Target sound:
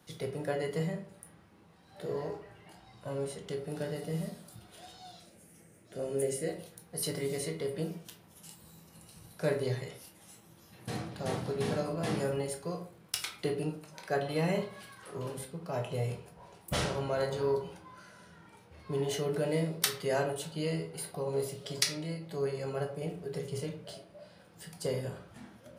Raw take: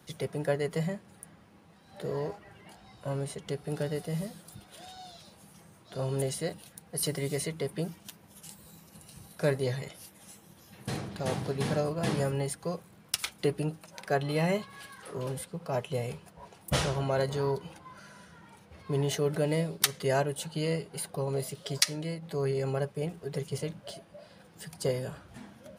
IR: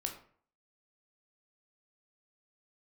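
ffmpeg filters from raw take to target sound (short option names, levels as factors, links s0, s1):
-filter_complex "[0:a]asettb=1/sr,asplit=3[s0][s1][s2];[s0]atrim=end=5.204[s3];[s1]atrim=start=5.2:end=6.49,asetpts=PTS-STARTPTS,afade=t=in:d=0.004:c=qsin,afade=t=out:st=1.286:d=0.004:c=qsin,equalizer=f=125:t=o:w=1:g=-4,equalizer=f=250:t=o:w=1:g=3,equalizer=f=500:t=o:w=1:g=4,equalizer=f=1000:t=o:w=1:g=-12,equalizer=f=2000:t=o:w=1:g=5,equalizer=f=4000:t=o:w=1:g=-10,equalizer=f=8000:t=o:w=1:g=5[s4];[s2]atrim=start=6.486[s5];[s3][s4]acrossfade=d=0.004:c1=hsin:c2=qsin[s6];[s6][s5]acrossfade=d=0.004:c1=qsin:c2=hsin[s7];[1:a]atrim=start_sample=2205[s8];[s7][s8]afir=irnorm=-1:irlink=0,volume=0.708"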